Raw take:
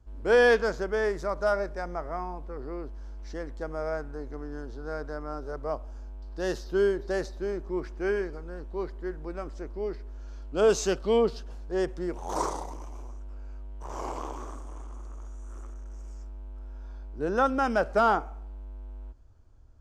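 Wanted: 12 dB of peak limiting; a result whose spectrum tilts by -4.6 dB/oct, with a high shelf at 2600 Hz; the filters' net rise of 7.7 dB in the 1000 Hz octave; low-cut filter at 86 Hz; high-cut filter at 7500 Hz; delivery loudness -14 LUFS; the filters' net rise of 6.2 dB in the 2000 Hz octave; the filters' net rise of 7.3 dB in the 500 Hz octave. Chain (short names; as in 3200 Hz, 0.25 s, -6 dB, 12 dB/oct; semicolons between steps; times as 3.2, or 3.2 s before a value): HPF 86 Hz; LPF 7500 Hz; bell 500 Hz +7 dB; bell 1000 Hz +6.5 dB; bell 2000 Hz +3.5 dB; high shelf 2600 Hz +3.5 dB; gain +14 dB; limiter -2 dBFS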